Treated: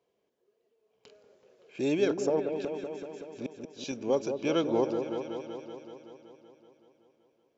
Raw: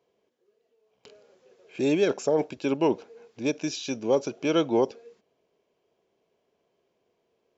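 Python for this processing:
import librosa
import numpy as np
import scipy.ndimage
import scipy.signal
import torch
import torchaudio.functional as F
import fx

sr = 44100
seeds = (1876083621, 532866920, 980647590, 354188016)

y = fx.gate_flip(x, sr, shuts_db=-19.0, range_db=-37, at=(2.39, 3.91), fade=0.02)
y = fx.echo_opening(y, sr, ms=189, hz=750, octaves=1, feedback_pct=70, wet_db=-6)
y = y * 10.0 ** (-4.5 / 20.0)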